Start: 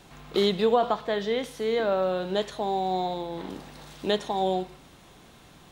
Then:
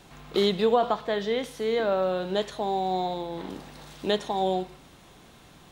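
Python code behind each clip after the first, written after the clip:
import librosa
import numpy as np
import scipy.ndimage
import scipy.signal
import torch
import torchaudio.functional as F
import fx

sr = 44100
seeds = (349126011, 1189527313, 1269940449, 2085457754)

y = x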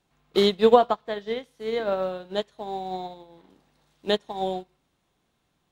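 y = fx.upward_expand(x, sr, threshold_db=-37.0, expansion=2.5)
y = y * 10.0 ** (8.0 / 20.0)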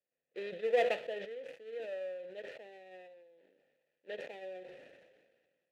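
y = fx.dead_time(x, sr, dead_ms=0.22)
y = fx.vowel_filter(y, sr, vowel='e')
y = fx.sustainer(y, sr, db_per_s=36.0)
y = y * 10.0 ** (-8.5 / 20.0)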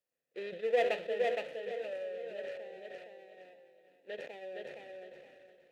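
y = fx.echo_feedback(x, sr, ms=466, feedback_pct=26, wet_db=-3.5)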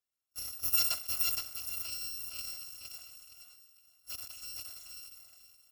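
y = fx.bit_reversed(x, sr, seeds[0], block=256)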